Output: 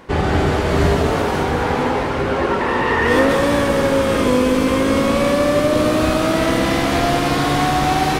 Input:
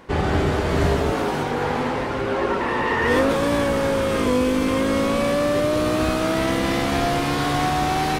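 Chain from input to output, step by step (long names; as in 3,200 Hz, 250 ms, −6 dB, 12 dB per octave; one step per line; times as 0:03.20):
echo with a time of its own for lows and highs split 470 Hz, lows 696 ms, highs 196 ms, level −8 dB
level +3.5 dB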